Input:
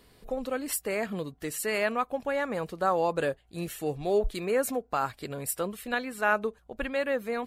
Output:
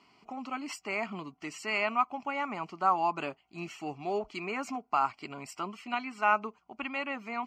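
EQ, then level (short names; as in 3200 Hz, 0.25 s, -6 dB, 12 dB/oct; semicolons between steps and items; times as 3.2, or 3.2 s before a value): BPF 300–4300 Hz; fixed phaser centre 2500 Hz, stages 8; +4.0 dB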